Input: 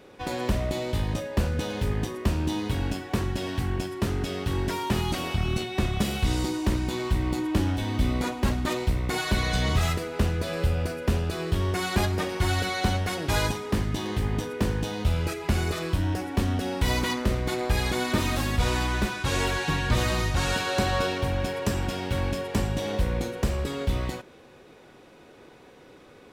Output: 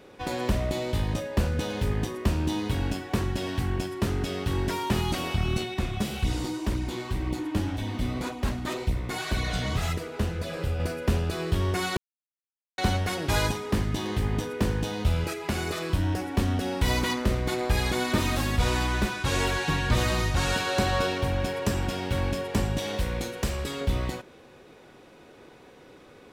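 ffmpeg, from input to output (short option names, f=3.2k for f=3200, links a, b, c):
-filter_complex "[0:a]asettb=1/sr,asplit=3[a][b][c];[a]atrim=end=5.744[d];[b]atrim=start=5.74:end=10.8,asetpts=PTS-STARTPTS,afade=t=in:d=0.004:c=qsin,afade=t=out:st=5.056:d=0.004:c=qsin,flanger=delay=0.3:depth=9.3:regen=-26:speed=1.9:shape=sinusoidal[e];[c]atrim=start=10.796[f];[d][e]acrossfade=d=0.004:c1=hsin:c2=qsin[g];[g][f]acrossfade=d=0.004:c1=qsin:c2=hsin,asettb=1/sr,asplit=3[h][i][j];[h]atrim=end=15.244[k];[i]atrim=start=15.24:end=15.9,asetpts=PTS-STARTPTS,afade=t=in:d=0.004:c=qsin,afade=t=out:st=0.656:d=0.004:c=qsin,highpass=f=180:p=1[l];[j]atrim=start=15.896[m];[k][l]acrossfade=d=0.004:c1=hsin:c2=qsin[n];[n][m]acrossfade=d=0.004:c1=qsin:c2=hsin,asettb=1/sr,asplit=3[o][p][q];[o]atrim=end=22.784[r];[p]atrim=start=22.78:end=23.81,asetpts=PTS-STARTPTS,afade=t=in:d=0.004:c=qsin,afade=t=out:st=1.026:d=0.004:c=qsin,tiltshelf=f=1.3k:g=-3.5[s];[q]atrim=start=23.806[t];[r][s]acrossfade=d=0.004:c1=hsin:c2=qsin[u];[u][t]acrossfade=d=0.004:c1=qsin:c2=hsin,asplit=3[v][w][x];[v]atrim=end=11.97,asetpts=PTS-STARTPTS,afade=t=out:st=11.966:d=0.004:c=hsin[y];[w]atrim=start=11.97:end=12.78,asetpts=PTS-STARTPTS,volume=0[z];[x]atrim=start=12.78,asetpts=PTS-STARTPTS,afade=t=in:d=0.004:c=hsin[aa];[y][z][aa]concat=n=3:v=0:a=1"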